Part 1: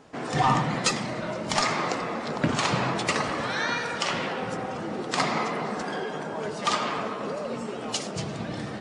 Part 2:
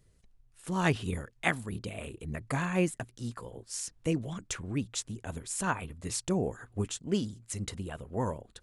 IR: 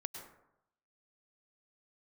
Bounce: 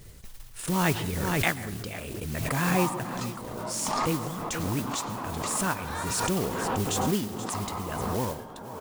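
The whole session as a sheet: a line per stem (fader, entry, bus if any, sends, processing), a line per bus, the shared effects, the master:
-17.5 dB, 2.35 s, no send, no echo send, ten-band EQ 250 Hz +7 dB, 1000 Hz +11 dB, 2000 Hz -5 dB
-2.0 dB, 0.00 s, send -6 dB, echo send -13 dB, modulation noise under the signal 11 dB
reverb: on, RT60 0.85 s, pre-delay 93 ms
echo: echo 0.478 s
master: gate -44 dBFS, range -24 dB; backwards sustainer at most 21 dB/s

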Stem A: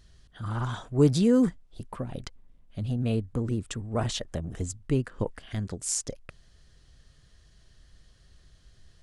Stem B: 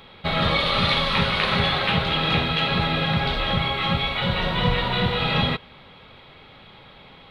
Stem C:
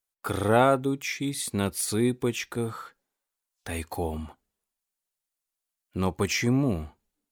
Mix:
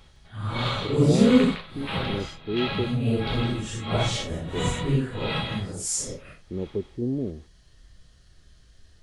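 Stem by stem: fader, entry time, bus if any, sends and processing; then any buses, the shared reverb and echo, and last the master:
+2.5 dB, 0.00 s, no send, no echo send, phase scrambler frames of 0.2 s
-11.5 dB, 0.00 s, no send, echo send -6 dB, AGC gain up to 7.5 dB; dB-linear tremolo 1.5 Hz, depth 25 dB
+2.5 dB, 0.55 s, no send, no echo send, ladder low-pass 510 Hz, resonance 45%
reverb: off
echo: echo 0.16 s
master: dry

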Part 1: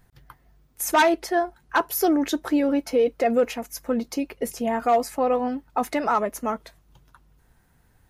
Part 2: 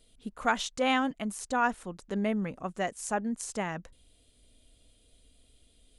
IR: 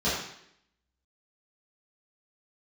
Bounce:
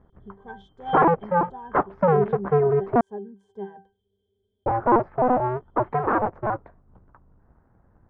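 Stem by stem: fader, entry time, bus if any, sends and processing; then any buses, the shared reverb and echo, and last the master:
+2.0 dB, 0.00 s, muted 3.01–4.66, no send, cycle switcher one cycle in 2, inverted; LPF 1300 Hz 24 dB/oct
+0.5 dB, 0.00 s, no send, octave resonator G, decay 0.27 s; small resonant body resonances 420/630/970/3400 Hz, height 17 dB, ringing for 35 ms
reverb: off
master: dry

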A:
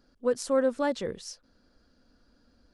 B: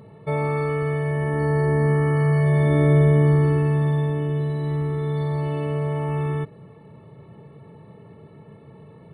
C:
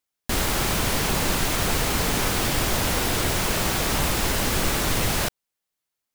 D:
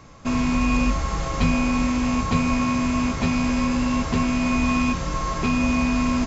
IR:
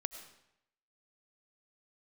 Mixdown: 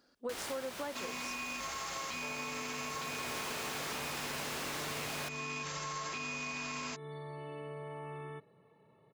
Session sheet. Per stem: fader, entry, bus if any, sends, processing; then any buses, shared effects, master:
+0.5 dB, 0.00 s, no send, dry
-12.5 dB, 1.95 s, no send, dry
-2.0 dB, 0.00 s, send -19 dB, high shelf 7800 Hz -7 dB; auto duck -20 dB, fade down 1.75 s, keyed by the first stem
-2.0 dB, 0.70 s, no send, tilt shelf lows -6.5 dB; limiter -21 dBFS, peak gain reduction 9.5 dB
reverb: on, RT60 0.80 s, pre-delay 60 ms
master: HPF 520 Hz 6 dB/oct; compressor 6:1, threshold -37 dBFS, peak gain reduction 14 dB

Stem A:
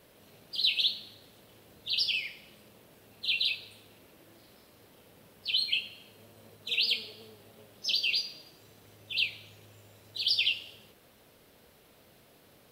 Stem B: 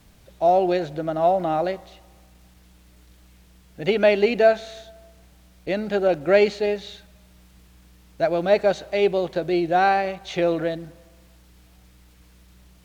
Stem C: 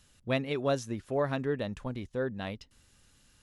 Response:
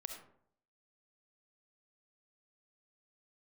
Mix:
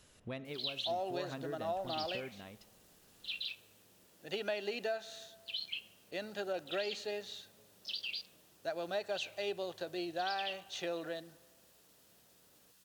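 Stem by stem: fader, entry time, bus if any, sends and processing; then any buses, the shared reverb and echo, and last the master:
-10.5 dB, 0.00 s, no send, Wiener smoothing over 9 samples; steep low-pass 5700 Hz
-13.0 dB, 0.45 s, no send, HPF 83 Hz; tilt +3 dB/oct; notch 2200 Hz, Q 5.3
-2.0 dB, 0.00 s, send -8.5 dB, compressor 3:1, threshold -42 dBFS, peak gain reduction 13.5 dB; random-step tremolo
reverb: on, RT60 0.65 s, pre-delay 25 ms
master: low shelf 61 Hz -7.5 dB; compressor 6:1, threshold -33 dBFS, peak gain reduction 8 dB

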